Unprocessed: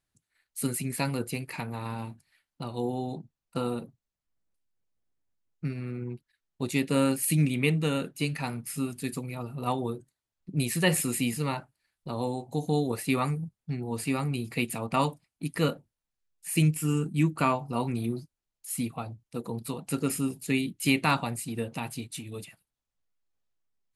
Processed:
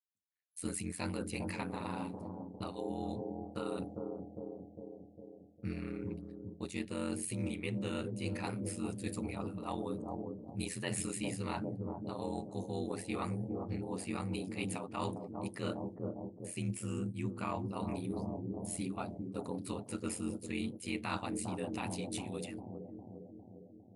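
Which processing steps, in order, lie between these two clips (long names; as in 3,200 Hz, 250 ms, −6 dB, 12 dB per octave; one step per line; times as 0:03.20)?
mains-hum notches 60/120/180/240/300 Hz
noise gate −55 dBFS, range −26 dB
brick-wall band-pass 120–11,000 Hz
ring modulation 44 Hz
bucket-brigade delay 404 ms, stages 2,048, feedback 63%, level −8 dB
reversed playback
downward compressor 6 to 1, threshold −36 dBFS, peak gain reduction 14.5 dB
reversed playback
level +1.5 dB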